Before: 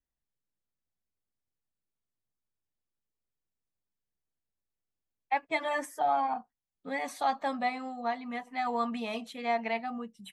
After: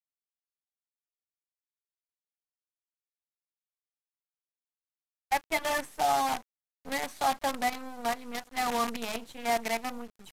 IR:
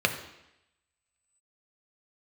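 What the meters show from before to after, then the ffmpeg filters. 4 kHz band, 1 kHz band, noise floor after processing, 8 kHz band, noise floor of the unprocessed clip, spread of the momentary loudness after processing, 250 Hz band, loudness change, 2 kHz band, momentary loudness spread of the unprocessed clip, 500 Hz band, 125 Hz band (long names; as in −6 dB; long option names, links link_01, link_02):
+7.0 dB, +1.0 dB, below −85 dBFS, +12.0 dB, below −85 dBFS, 8 LU, −1.0 dB, +1.5 dB, +2.0 dB, 7 LU, +1.0 dB, can't be measured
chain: -af "acrusher=bits=6:dc=4:mix=0:aa=0.000001,aresample=32000,aresample=44100,volume=1dB"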